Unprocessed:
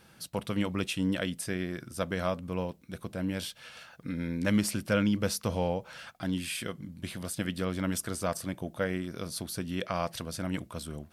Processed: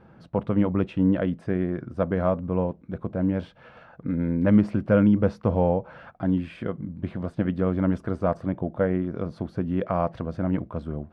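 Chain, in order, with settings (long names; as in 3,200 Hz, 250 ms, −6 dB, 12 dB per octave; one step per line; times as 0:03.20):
low-pass filter 1,000 Hz 12 dB per octave
level +8.5 dB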